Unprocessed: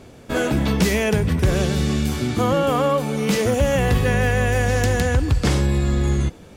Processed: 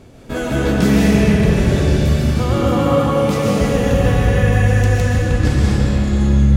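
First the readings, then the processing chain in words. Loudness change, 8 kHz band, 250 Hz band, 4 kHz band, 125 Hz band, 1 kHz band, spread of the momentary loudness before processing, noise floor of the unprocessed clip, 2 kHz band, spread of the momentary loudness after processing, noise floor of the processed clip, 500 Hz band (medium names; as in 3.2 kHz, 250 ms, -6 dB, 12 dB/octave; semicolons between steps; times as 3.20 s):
+4.5 dB, -0.5 dB, +6.0 dB, +1.0 dB, +6.0 dB, +2.0 dB, 3 LU, -44 dBFS, +1.0 dB, 3 LU, -22 dBFS, +3.0 dB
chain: bass shelf 260 Hz +5.5 dB; gain riding within 5 dB 2 s; algorithmic reverb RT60 3.7 s, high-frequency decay 0.75×, pre-delay 90 ms, DRR -5.5 dB; trim -5.5 dB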